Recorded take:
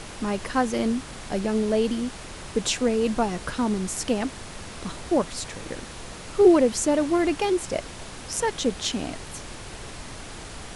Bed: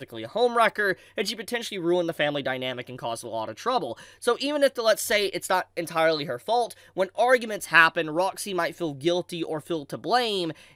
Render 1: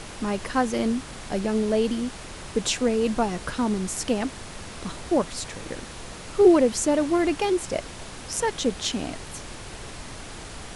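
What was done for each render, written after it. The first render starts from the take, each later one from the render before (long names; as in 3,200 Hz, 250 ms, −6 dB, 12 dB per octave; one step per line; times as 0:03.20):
no processing that can be heard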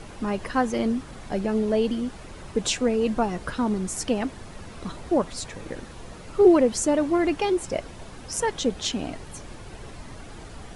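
broadband denoise 9 dB, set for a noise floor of −40 dBFS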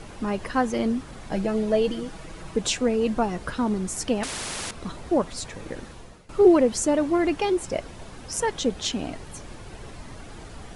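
0:01.31–0:02.56: comb filter 6.2 ms, depth 58%
0:04.23–0:04.71: every bin compressed towards the loudest bin 4 to 1
0:05.87–0:06.29: fade out, to −17 dB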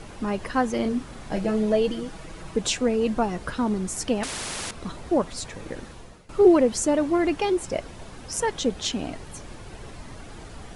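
0:00.81–0:01.73: double-tracking delay 33 ms −8 dB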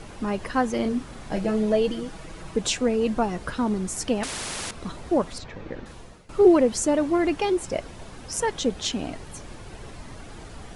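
0:05.38–0:05.86: high-frequency loss of the air 190 metres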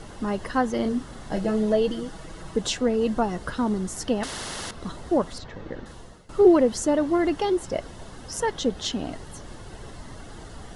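dynamic equaliser 8,300 Hz, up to −5 dB, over −46 dBFS, Q 1.3
notch filter 2,400 Hz, Q 5.2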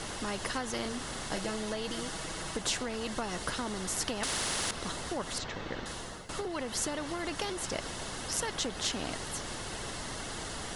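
downward compressor, threshold −23 dBFS, peak gain reduction 12 dB
every bin compressed towards the loudest bin 2 to 1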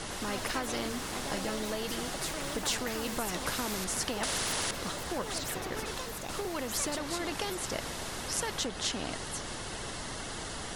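delay with pitch and tempo change per echo 106 ms, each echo +4 semitones, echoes 3, each echo −6 dB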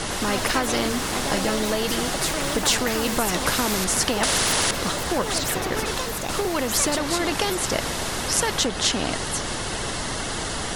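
level +11 dB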